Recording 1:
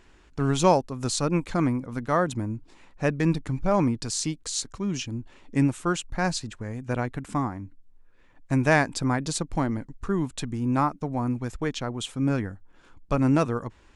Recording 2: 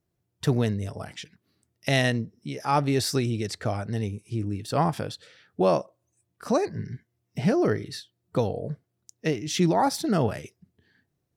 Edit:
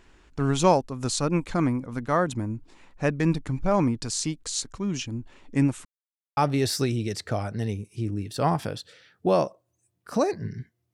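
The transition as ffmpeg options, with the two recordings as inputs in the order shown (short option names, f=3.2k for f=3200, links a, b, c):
-filter_complex "[0:a]apad=whole_dur=10.93,atrim=end=10.93,asplit=2[a][b];[a]atrim=end=5.85,asetpts=PTS-STARTPTS,afade=t=out:st=5.846:d=0.004:c=hsin[c];[b]atrim=start=5.85:end=6.37,asetpts=PTS-STARTPTS,volume=0[d];[1:a]atrim=start=2.71:end=7.27,asetpts=PTS-STARTPTS,afade=t=in:d=0.004:c=hsin[e];[c][d][e]concat=n=3:v=0:a=1"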